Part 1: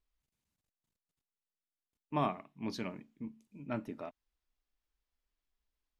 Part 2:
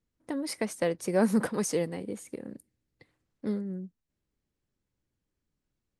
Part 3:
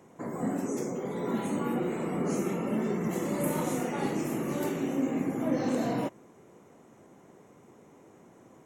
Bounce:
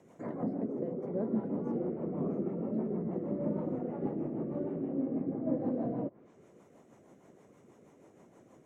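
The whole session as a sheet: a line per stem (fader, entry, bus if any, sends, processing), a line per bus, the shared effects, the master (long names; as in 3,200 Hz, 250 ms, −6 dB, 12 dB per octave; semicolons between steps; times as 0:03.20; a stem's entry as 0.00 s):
−14.5 dB, 0.00 s, no send, multiband upward and downward expander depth 100%
−10.0 dB, 0.00 s, no send, bass and treble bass +1 dB, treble +7 dB
−2.5 dB, 0.00 s, no send, no processing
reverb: not used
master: treble cut that deepens with the level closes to 680 Hz, closed at −31 dBFS; parametric band 610 Hz +3.5 dB 0.4 octaves; rotating-speaker cabinet horn 6.3 Hz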